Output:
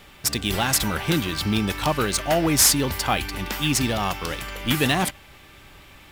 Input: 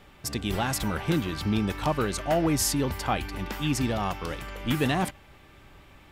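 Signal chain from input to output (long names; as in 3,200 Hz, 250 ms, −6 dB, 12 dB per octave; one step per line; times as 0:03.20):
high-shelf EQ 2,400 Hz +12 dB
in parallel at −9.5 dB: sample-rate reduction 13,000 Hz, jitter 0%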